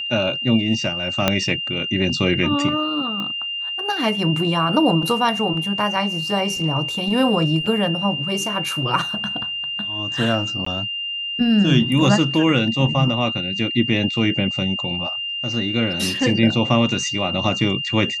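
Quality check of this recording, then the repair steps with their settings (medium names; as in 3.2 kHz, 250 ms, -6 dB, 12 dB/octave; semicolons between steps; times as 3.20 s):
whine 2.8 kHz -24 dBFS
1.28 s: pop -1 dBFS
3.20 s: pop -16 dBFS
7.66 s: dropout 4.8 ms
10.65–10.66 s: dropout 14 ms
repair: de-click; band-stop 2.8 kHz, Q 30; interpolate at 7.66 s, 4.8 ms; interpolate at 10.65 s, 14 ms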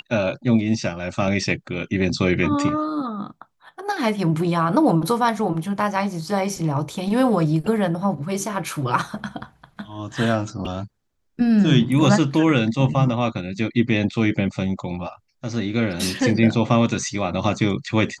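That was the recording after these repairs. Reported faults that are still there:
1.28 s: pop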